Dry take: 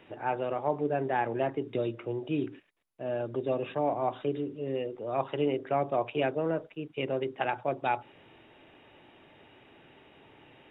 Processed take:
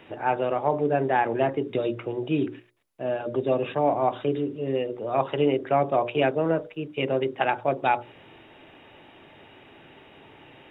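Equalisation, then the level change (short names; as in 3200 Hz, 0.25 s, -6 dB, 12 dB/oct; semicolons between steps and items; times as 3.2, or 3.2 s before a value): notches 60/120/180/240/300/360/420/480/540/600 Hz; +6.5 dB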